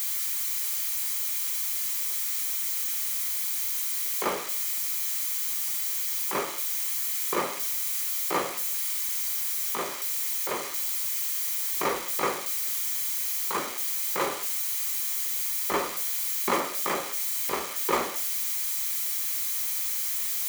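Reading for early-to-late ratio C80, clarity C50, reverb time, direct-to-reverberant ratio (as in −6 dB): 20.5 dB, 17.5 dB, 0.55 s, 9.5 dB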